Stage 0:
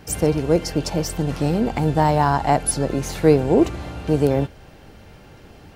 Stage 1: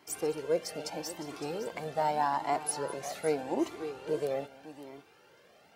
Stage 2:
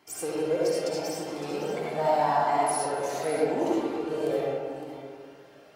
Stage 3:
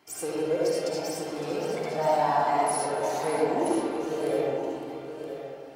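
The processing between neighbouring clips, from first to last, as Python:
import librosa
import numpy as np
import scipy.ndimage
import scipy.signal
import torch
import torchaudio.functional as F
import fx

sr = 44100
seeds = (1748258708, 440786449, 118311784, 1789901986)

y1 = scipy.signal.sosfilt(scipy.signal.butter(2, 350.0, 'highpass', fs=sr, output='sos'), x)
y1 = fx.echo_multitap(y1, sr, ms=(207, 560), db=(-20.0, -11.5))
y1 = fx.comb_cascade(y1, sr, direction='rising', hz=0.82)
y1 = y1 * 10.0 ** (-6.5 / 20.0)
y2 = fx.rev_freeverb(y1, sr, rt60_s=1.8, hf_ratio=0.4, predelay_ms=30, drr_db=-6.0)
y2 = y2 * 10.0 ** (-1.5 / 20.0)
y3 = y2 + 10.0 ** (-9.5 / 20.0) * np.pad(y2, (int(971 * sr / 1000.0), 0))[:len(y2)]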